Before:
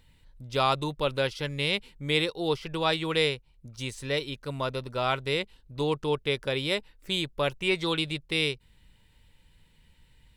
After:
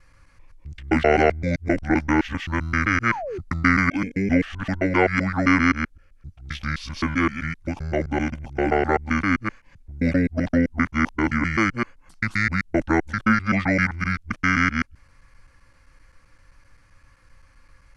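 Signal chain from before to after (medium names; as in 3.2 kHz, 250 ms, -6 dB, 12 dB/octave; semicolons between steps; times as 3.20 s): time reversed locally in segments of 75 ms; speed mistake 78 rpm record played at 45 rpm; painted sound fall, 3.03–3.39 s, 340–1500 Hz -37 dBFS; trim +7 dB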